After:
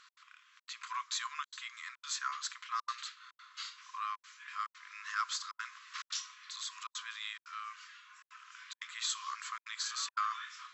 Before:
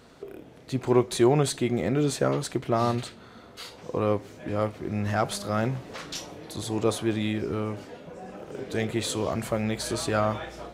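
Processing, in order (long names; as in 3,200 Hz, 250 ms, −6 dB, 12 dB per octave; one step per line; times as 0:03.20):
dynamic equaliser 2,400 Hz, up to −5 dB, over −44 dBFS, Q 1.3
gate pattern "x.xxxxx.xxxxxxxx" 177 BPM −60 dB
linear-phase brick-wall band-pass 1,000–7,800 Hz
level −1 dB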